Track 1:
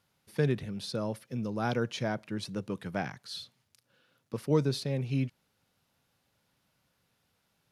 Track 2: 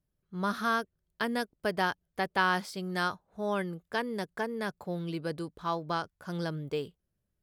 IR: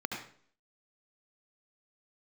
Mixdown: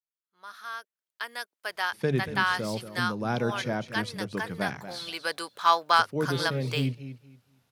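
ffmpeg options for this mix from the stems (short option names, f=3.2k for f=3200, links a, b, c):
-filter_complex "[0:a]bandreject=f=50:t=h:w=6,bandreject=f=100:t=h:w=6,bandreject=f=150:t=h:w=6,adelay=1650,volume=-4dB,asplit=2[a][b];[b]volume=-12.5dB[c];[1:a]highpass=1.1k,dynaudnorm=f=350:g=7:m=13.5dB,volume=-3.5dB,afade=t=in:st=4.84:d=0.6:silence=0.281838,asplit=2[d][e];[e]apad=whole_len=413162[f];[a][f]sidechaincompress=threshold=-28dB:ratio=8:attack=35:release=674[g];[c]aecho=0:1:234|468|702|936:1|0.22|0.0484|0.0106[h];[g][d][h]amix=inputs=3:normalize=0,dynaudnorm=f=260:g=3:m=6dB,asoftclip=type=hard:threshold=-9.5dB,adynamicequalizer=threshold=0.0158:dfrequency=3500:dqfactor=0.7:tfrequency=3500:tqfactor=0.7:attack=5:release=100:ratio=0.375:range=2:mode=cutabove:tftype=highshelf"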